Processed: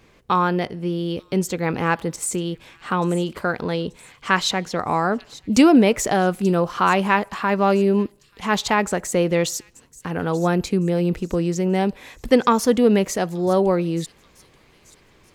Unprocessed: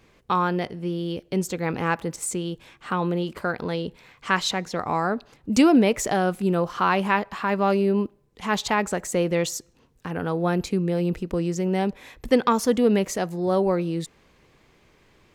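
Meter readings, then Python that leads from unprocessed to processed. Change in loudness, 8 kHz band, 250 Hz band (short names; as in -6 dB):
+3.5 dB, +3.5 dB, +3.5 dB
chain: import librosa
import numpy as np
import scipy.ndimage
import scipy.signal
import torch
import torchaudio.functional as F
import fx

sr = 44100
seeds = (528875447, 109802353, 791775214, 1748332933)

y = fx.echo_wet_highpass(x, sr, ms=883, feedback_pct=39, hz=4400.0, wet_db=-15)
y = y * 10.0 ** (3.5 / 20.0)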